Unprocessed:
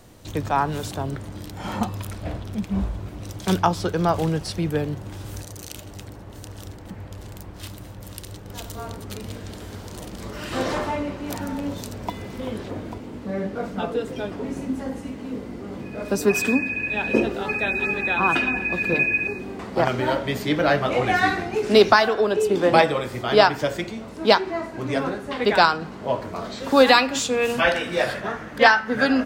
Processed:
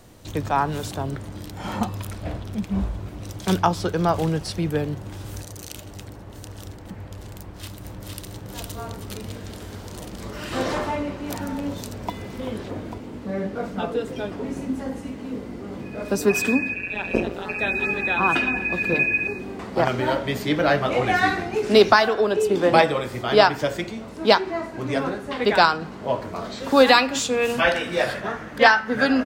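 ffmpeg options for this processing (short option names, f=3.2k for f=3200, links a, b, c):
-filter_complex "[0:a]asplit=2[a][b];[b]afade=t=in:st=7.38:d=0.01,afade=t=out:st=8.27:d=0.01,aecho=0:1:460|920|1380|1840|2300|2760|3220:0.749894|0.374947|0.187474|0.0937368|0.0468684|0.0234342|0.0117171[c];[a][c]amix=inputs=2:normalize=0,asplit=3[d][e][f];[d]afade=t=out:st=16.73:d=0.02[g];[e]tremolo=f=180:d=0.824,afade=t=in:st=16.73:d=0.02,afade=t=out:st=17.57:d=0.02[h];[f]afade=t=in:st=17.57:d=0.02[i];[g][h][i]amix=inputs=3:normalize=0"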